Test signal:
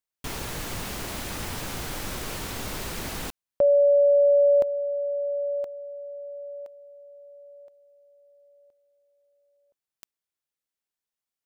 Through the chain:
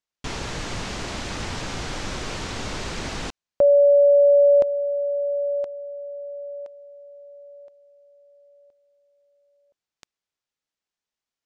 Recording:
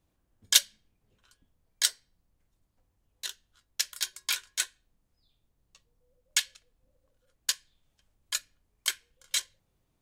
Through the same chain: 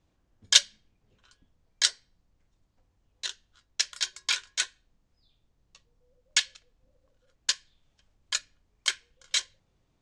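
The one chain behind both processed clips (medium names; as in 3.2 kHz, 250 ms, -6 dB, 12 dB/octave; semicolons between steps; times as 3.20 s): low-pass 7.1 kHz 24 dB/octave; trim +3.5 dB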